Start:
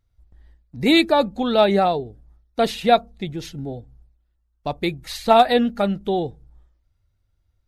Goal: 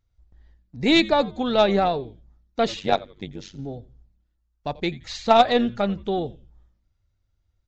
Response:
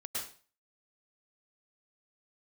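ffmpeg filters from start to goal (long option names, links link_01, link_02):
-filter_complex "[0:a]highshelf=frequency=5600:gain=3,asplit=2[link_01][link_02];[link_02]asplit=3[link_03][link_04][link_05];[link_03]adelay=86,afreqshift=-120,volume=-19.5dB[link_06];[link_04]adelay=172,afreqshift=-240,volume=-29.4dB[link_07];[link_05]adelay=258,afreqshift=-360,volume=-39.3dB[link_08];[link_06][link_07][link_08]amix=inputs=3:normalize=0[link_09];[link_01][link_09]amix=inputs=2:normalize=0,asettb=1/sr,asplit=3[link_10][link_11][link_12];[link_10]atrim=end=2.794[link_13];[link_11]atrim=start=2.79:end=3.59,asetpts=PTS-STARTPTS,afade=type=in:duration=0.004:curve=qsin,afade=type=out:start_time=0.796:duration=0.004:curve=qsin,tremolo=f=96:d=0.947[link_14];[link_12]atrim=start=3.586[link_15];[link_13][link_14]acrossfade=duration=0.004:curve1=hsin:curve2=qsin[link_16];[link_16][link_15]acrossfade=duration=0.004:curve1=qsin:curve2=hsin,aeval=exprs='0.75*(cos(1*acos(clip(val(0)/0.75,-1,1)))-cos(1*PI/2))+0.0944*(cos(3*acos(clip(val(0)/0.75,-1,1)))-cos(3*PI/2))+0.0133*(cos(5*acos(clip(val(0)/0.75,-1,1)))-cos(5*PI/2))+0.015*(cos(6*acos(clip(val(0)/0.75,-1,1)))-cos(6*PI/2))':channel_layout=same,aresample=16000,aresample=44100"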